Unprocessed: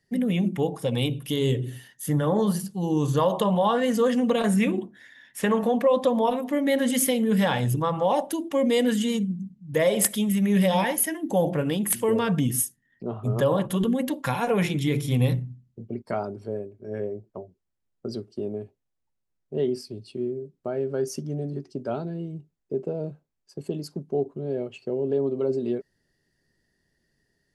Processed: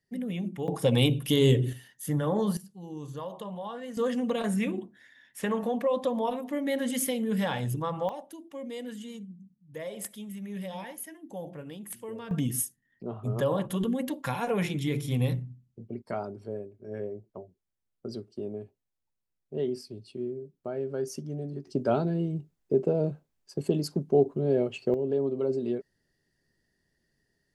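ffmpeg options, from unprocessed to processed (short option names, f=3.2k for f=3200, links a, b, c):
-af "asetnsamples=n=441:p=0,asendcmd='0.68 volume volume 2.5dB;1.73 volume volume -4.5dB;2.57 volume volume -16dB;3.97 volume volume -6.5dB;8.09 volume volume -16.5dB;12.31 volume volume -5dB;21.67 volume volume 4dB;24.94 volume volume -3dB',volume=-9dB"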